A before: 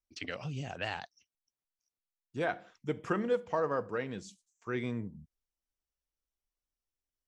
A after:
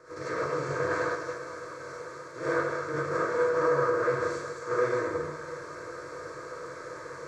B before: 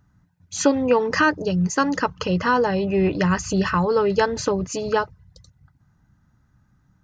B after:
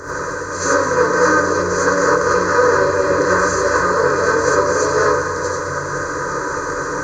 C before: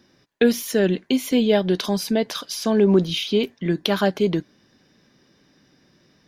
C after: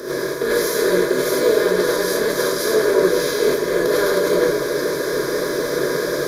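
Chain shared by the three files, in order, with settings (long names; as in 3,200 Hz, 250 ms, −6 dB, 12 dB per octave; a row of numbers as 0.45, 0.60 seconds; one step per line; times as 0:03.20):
compressor on every frequency bin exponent 0.2
in parallel at −1.5 dB: speech leveller within 4 dB 0.5 s
on the sum: phaser with its sweep stopped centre 780 Hz, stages 6
on a send: echo with a time of its own for lows and highs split 400 Hz, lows 111 ms, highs 210 ms, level −9 dB
on the sum: reverb whose tail is shaped and stops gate 120 ms rising, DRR −7.5 dB
multiband upward and downward expander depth 40%
level −13.5 dB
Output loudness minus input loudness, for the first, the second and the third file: +5.5, +5.0, +2.5 LU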